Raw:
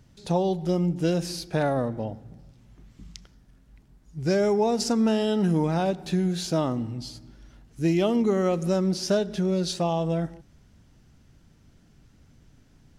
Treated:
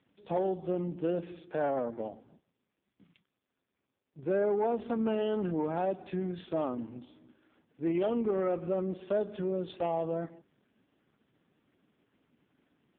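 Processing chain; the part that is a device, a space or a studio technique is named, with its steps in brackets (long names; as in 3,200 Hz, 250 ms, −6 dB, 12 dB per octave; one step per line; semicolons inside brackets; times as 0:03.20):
0:02.11–0:04.33: noise gate −45 dBFS, range −24 dB
telephone (band-pass filter 280–3,500 Hz; soft clipping −19 dBFS, distortion −18 dB; level −2.5 dB; AMR narrowband 4.75 kbit/s 8,000 Hz)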